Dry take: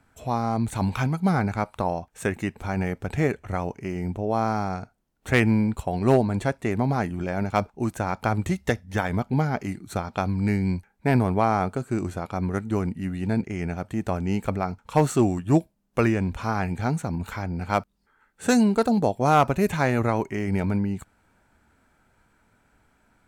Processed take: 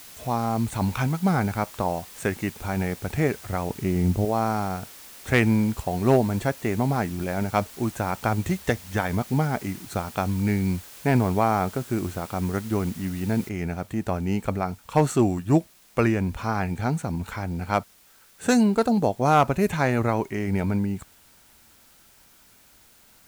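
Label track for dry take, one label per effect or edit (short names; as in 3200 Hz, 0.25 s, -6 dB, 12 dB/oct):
3.700000	4.250000	low shelf 360 Hz +9 dB
13.490000	13.490000	noise floor step -45 dB -56 dB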